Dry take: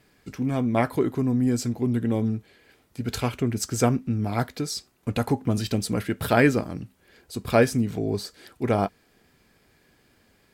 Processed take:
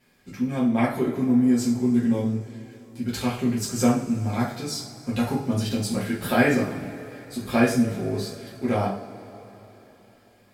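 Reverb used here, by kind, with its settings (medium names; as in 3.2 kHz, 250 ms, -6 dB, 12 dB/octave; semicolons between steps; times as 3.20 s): two-slope reverb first 0.42 s, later 3.9 s, from -21 dB, DRR -7 dB; trim -7.5 dB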